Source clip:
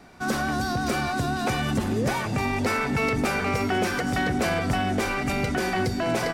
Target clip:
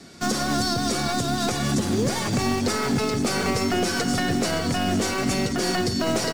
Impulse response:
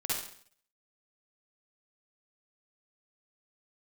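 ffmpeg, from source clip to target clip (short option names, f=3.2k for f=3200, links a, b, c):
-filter_complex "[0:a]equalizer=f=2.3k:t=o:w=2.1:g=-14,asplit=2[a][b];[b]aecho=0:1:143:0.126[c];[a][c]amix=inputs=2:normalize=0,crystalizer=i=9.5:c=0,lowpass=6.6k,highshelf=f=4.3k:g=-11,asetrate=42845,aresample=44100,atempo=1.0293,acrossover=split=570|1300[d][e][f];[d]highpass=f=150:p=1[g];[e]acrusher=bits=4:dc=4:mix=0:aa=0.000001[h];[f]aecho=1:1:7.2:0.65[i];[g][h][i]amix=inputs=3:normalize=0,alimiter=limit=-21.5dB:level=0:latency=1:release=249,volume=8dB"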